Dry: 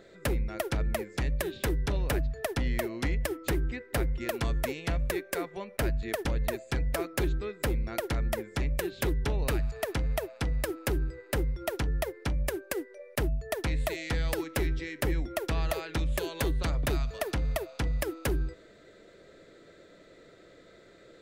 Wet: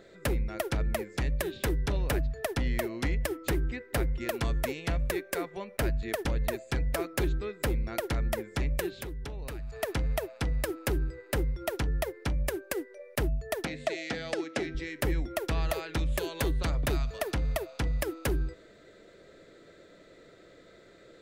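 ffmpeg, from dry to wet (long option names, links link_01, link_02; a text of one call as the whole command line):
ffmpeg -i in.wav -filter_complex "[0:a]asettb=1/sr,asplit=3[link_01][link_02][link_03];[link_01]atrim=end=8.934[link_04];[link_02]atrim=start=8.93:end=9.73,asetpts=PTS-STARTPTS,afade=type=in:duration=0.004:curve=qsin,afade=type=out:start_time=0.796:duration=0.004:curve=qsin,acompressor=threshold=-36dB:ratio=5:attack=3.2:release=140:knee=1:detection=peak[link_05];[link_03]atrim=start=9.726[link_06];[link_04][link_05]acrossfade=duration=0.004:curve1=hsin:curve2=qsin[link_07];[link_07][link_06]acrossfade=duration=0.004:curve1=qsin:curve2=hsin,asettb=1/sr,asplit=3[link_08][link_09][link_10];[link_08]atrim=end=13.654[link_11];[link_09]atrim=start=13.65:end=14.75,asetpts=PTS-STARTPTS,afade=type=in:duration=0.004:curve=qsin,afade=type=out:start_time=1.096:duration=0.004:curve=qsin,highpass=210,equalizer=frequency=230:width_type=q:width=4:gain=5,equalizer=frequency=690:width_type=q:width=4:gain=5,equalizer=frequency=990:width_type=q:width=4:gain=-7,lowpass=frequency=7300:width=0.5412,lowpass=frequency=7300:width=1.3066[link_12];[link_10]atrim=start=14.746[link_13];[link_11][link_12]acrossfade=duration=0.004:curve1=hsin:curve2=qsin[link_14];[link_14][link_13]acrossfade=duration=0.004:curve1=qsin:curve2=hsin" out.wav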